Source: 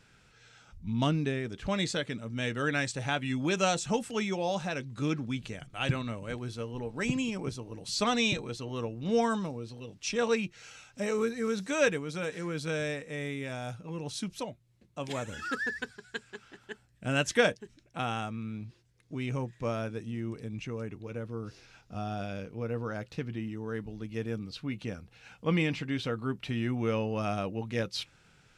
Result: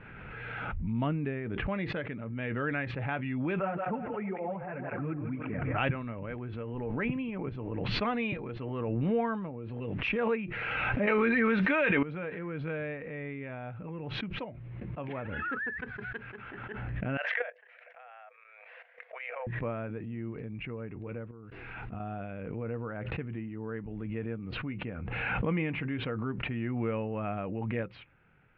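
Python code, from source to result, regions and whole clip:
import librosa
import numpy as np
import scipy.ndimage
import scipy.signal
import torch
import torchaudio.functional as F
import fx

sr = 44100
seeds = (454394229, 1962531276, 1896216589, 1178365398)

y = fx.chain(x, sr, fx.lowpass(hz=2100.0, slope=24),
    fx.echo_split(split_hz=420.0, low_ms=116, high_ms=161, feedback_pct=52, wet_db=-11),
    fx.flanger_cancel(hz=1.9, depth_ms=5.3), at=(3.59, 5.78))
y = fx.chain(y, sr, fx.tilt_shelf(db=-6.5, hz=1400.0),
    fx.comb(ms=3.3, depth=0.37),
    fx.env_flatten(amount_pct=100), at=(11.07, 12.03))
y = fx.chain(y, sr, fx.cheby_ripple_highpass(hz=480.0, ripple_db=9),
    fx.level_steps(step_db=12), at=(17.17, 19.47))
y = fx.chain(y, sr, fx.level_steps(step_db=23),
    fx.peak_eq(hz=560.0, db=-7.5, octaves=0.28), at=(21.31, 22.0))
y = scipy.signal.sosfilt(scipy.signal.butter(6, 2500.0, 'lowpass', fs=sr, output='sos'), y)
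y = fx.pre_swell(y, sr, db_per_s=21.0)
y = F.gain(torch.from_numpy(y), -3.0).numpy()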